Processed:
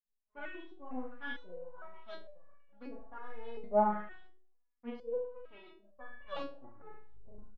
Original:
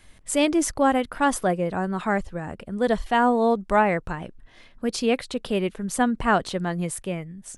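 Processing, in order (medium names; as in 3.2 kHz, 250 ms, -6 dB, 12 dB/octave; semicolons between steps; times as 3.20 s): tape stop on the ending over 1.43 s; treble shelf 5.2 kHz -9.5 dB; low-pass that closes with the level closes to 2.1 kHz, closed at -19.5 dBFS; resampled via 16 kHz; power-law waveshaper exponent 2; in parallel at -9.5 dB: overload inside the chain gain 21.5 dB; on the sum: flange 1.3 Hz, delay 5.5 ms, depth 3.7 ms, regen -34%; doubling 39 ms -3.5 dB; feedback delay 73 ms, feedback 34%, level -8.5 dB; on a send at -22 dB: reverberation RT60 0.65 s, pre-delay 85 ms; on the sum: LFO low-pass saw up 1.4 Hz 330–4800 Hz; resonator arpeggio 2.2 Hz 210–570 Hz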